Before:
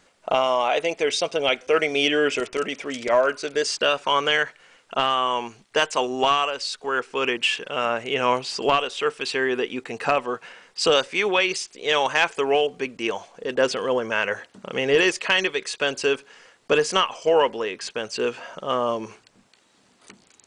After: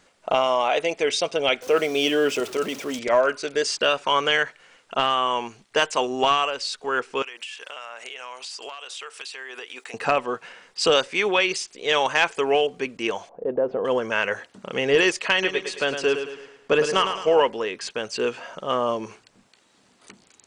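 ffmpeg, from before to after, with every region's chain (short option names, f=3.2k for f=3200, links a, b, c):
-filter_complex "[0:a]asettb=1/sr,asplit=3[a][b][c];[a]atrim=end=1.624[d];[b]atrim=start=1.62:end=2.99,asetpts=PTS-STARTPTS,afade=t=in:d=0.004:c=qsin,afade=t=out:st=1.366:d=0.004:c=qsin,aeval=exprs='val(0)+0.5*0.0211*sgn(val(0))':c=same,highpass=97,equalizer=f=2k:t=o:w=0.93:g=-6.5[e];[c]atrim=start=2.986[f];[d][e]acrossfade=d=0.004:c1=hsin:c2=qsin[g];[g][f]acrossfade=d=0.004:c1=qsin:c2=hsin,asettb=1/sr,asplit=3[h][i][j];[h]atrim=end=7.224[k];[i]atrim=start=7.22:end=9.94,asetpts=PTS-STARTPTS,afade=t=in:d=0.004:c=qsin,afade=t=out:st=2.716:d=0.004:c=qsin,highpass=720,highshelf=f=6k:g=11,acompressor=threshold=-32dB:ratio=16:attack=3.2:release=140:knee=1:detection=peak[l];[j]atrim=start=9.936[m];[k][l]acrossfade=d=0.004:c1=hsin:c2=qsin[n];[n][m]acrossfade=d=0.004:c1=qsin:c2=hsin,asettb=1/sr,asplit=3[o][p][q];[o]atrim=end=13.294[r];[p]atrim=start=13.29:end=13.85,asetpts=PTS-STARTPTS,afade=t=in:d=0.004:c=qsin,afade=t=out:st=0.556:d=0.004:c=qsin,lowpass=f=680:t=q:w=1.7,acompressor=threshold=-19dB:ratio=3:attack=3.2:release=140:knee=1:detection=peak[s];[q]atrim=start=13.846[t];[r][s]acrossfade=d=0.004:c1=hsin:c2=qsin[u];[u][t]acrossfade=d=0.004:c1=qsin:c2=hsin,asettb=1/sr,asplit=3[v][w][x];[v]atrim=end=15.324[y];[w]atrim=start=15.32:end=17.4,asetpts=PTS-STARTPTS,afade=t=in:d=0.004:c=qsin,afade=t=out:st=2.076:d=0.004:c=qsin,highshelf=f=4.4k:g=-6.5,aecho=1:1:107|214|321|428|535:0.398|0.171|0.0736|0.0317|0.0136,atrim=end_sample=91728[z];[x]atrim=start=17.396[aa];[y][z]acrossfade=d=0.004:c1=hsin:c2=qsin[ab];[ab][aa]acrossfade=d=0.004:c1=qsin:c2=hsin"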